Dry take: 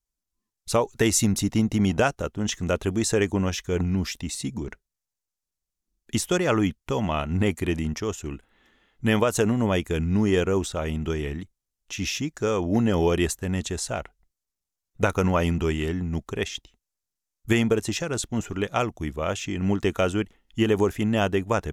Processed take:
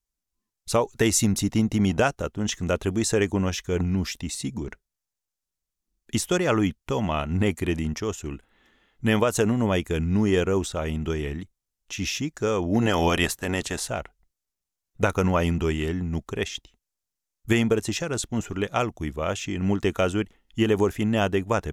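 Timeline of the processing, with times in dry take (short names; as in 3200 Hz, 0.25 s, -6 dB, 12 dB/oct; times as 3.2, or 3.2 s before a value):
12.81–13.87 spectral limiter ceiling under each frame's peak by 15 dB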